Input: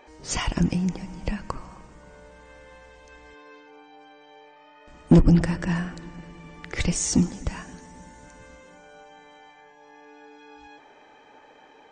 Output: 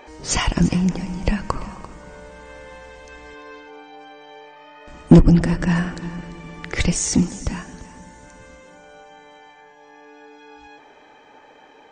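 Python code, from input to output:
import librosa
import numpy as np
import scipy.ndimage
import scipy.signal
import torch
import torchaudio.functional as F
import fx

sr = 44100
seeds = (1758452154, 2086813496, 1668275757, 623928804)

p1 = fx.rider(x, sr, range_db=4, speed_s=0.5)
p2 = p1 + fx.echo_single(p1, sr, ms=342, db=-16.5, dry=0)
y = p2 * librosa.db_to_amplitude(4.0)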